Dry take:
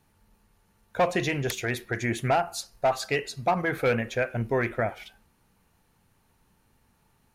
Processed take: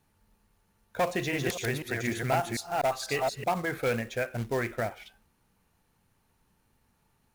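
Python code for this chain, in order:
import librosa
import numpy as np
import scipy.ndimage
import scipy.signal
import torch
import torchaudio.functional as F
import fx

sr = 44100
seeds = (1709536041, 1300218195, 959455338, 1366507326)

y = fx.reverse_delay(x, sr, ms=248, wet_db=-2, at=(1.08, 3.44))
y = fx.quant_float(y, sr, bits=2)
y = y * 10.0 ** (-4.0 / 20.0)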